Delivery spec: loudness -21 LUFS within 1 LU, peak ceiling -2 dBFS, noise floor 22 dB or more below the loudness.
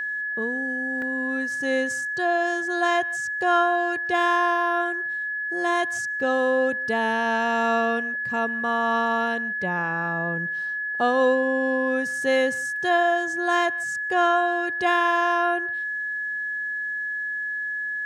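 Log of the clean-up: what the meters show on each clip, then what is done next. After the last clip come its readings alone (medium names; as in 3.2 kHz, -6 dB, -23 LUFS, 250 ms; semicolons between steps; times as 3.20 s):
dropouts 1; longest dropout 2.0 ms; steady tone 1.7 kHz; tone level -26 dBFS; loudness -23.5 LUFS; peak level -9.5 dBFS; loudness target -21.0 LUFS
-> interpolate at 1.02 s, 2 ms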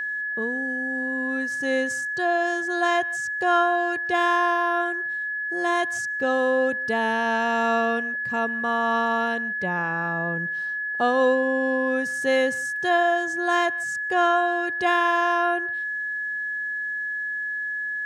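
dropouts 0; steady tone 1.7 kHz; tone level -26 dBFS
-> band-stop 1.7 kHz, Q 30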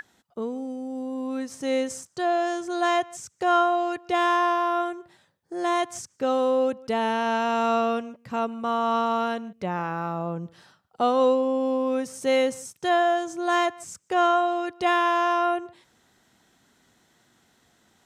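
steady tone not found; loudness -25.0 LUFS; peak level -10.5 dBFS; loudness target -21.0 LUFS
-> trim +4 dB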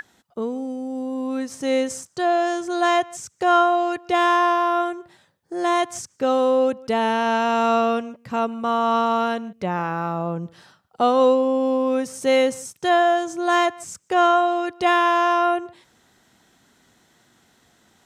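loudness -21.0 LUFS; peak level -6.5 dBFS; noise floor -63 dBFS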